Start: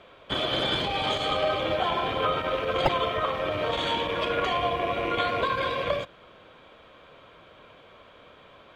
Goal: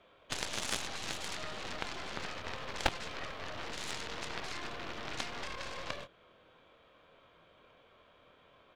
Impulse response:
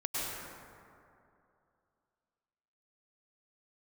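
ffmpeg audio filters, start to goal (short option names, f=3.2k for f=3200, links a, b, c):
-filter_complex "[0:a]asplit=2[a][b];[b]adelay=24,volume=-7dB[c];[a][c]amix=inputs=2:normalize=0,acrossover=split=290|3000[d][e][f];[e]acompressor=threshold=-27dB:ratio=10[g];[d][g][f]amix=inputs=3:normalize=0,aeval=exprs='0.2*(cos(1*acos(clip(val(0)/0.2,-1,1)))-cos(1*PI/2))+0.0794*(cos(3*acos(clip(val(0)/0.2,-1,1)))-cos(3*PI/2))+0.00631*(cos(8*acos(clip(val(0)/0.2,-1,1)))-cos(8*PI/2))':c=same,volume=2.5dB"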